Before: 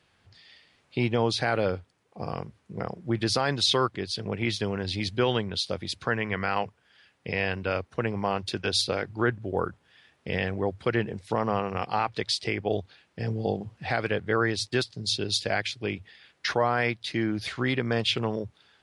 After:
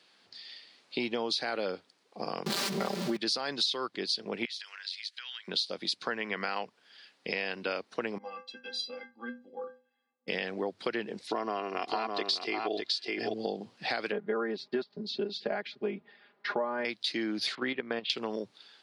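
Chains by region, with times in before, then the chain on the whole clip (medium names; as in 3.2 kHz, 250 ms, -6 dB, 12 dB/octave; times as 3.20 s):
2.46–3.17 s: jump at every zero crossing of -35.5 dBFS + comb 5.1 ms, depth 94% + level flattener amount 70%
4.45–5.48 s: Chebyshev high-pass 1.6 kHz, order 3 + compression 16:1, threshold -41 dBFS
8.18–10.28 s: level-controlled noise filter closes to 920 Hz, open at -24 dBFS + low-pass 3.5 kHz 6 dB/octave + inharmonic resonator 240 Hz, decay 0.39 s, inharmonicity 0.03
11.27–13.34 s: distance through air 52 m + comb 2.9 ms, depth 54% + delay 607 ms -4.5 dB
14.12–16.85 s: low-pass 1.2 kHz + comb 4.9 ms, depth 86%
17.55–18.10 s: block-companded coder 7-bit + low-pass 3.1 kHz 24 dB/octave + level held to a coarse grid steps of 13 dB
whole clip: high-pass 210 Hz 24 dB/octave; peaking EQ 4.4 kHz +10.5 dB 0.82 oct; compression 5:1, threshold -29 dBFS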